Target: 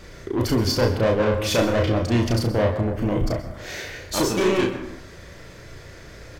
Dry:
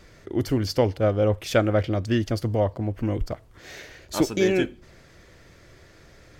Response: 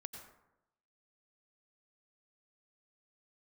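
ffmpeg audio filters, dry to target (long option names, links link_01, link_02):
-filter_complex "[0:a]asoftclip=type=tanh:threshold=-24.5dB,asplit=2[link_01][link_02];[link_02]adelay=35,volume=-7.5dB[link_03];[link_01][link_03]amix=inputs=2:normalize=0,asplit=2[link_04][link_05];[1:a]atrim=start_sample=2205,adelay=33[link_06];[link_05][link_06]afir=irnorm=-1:irlink=0,volume=1dB[link_07];[link_04][link_07]amix=inputs=2:normalize=0,volume=6.5dB"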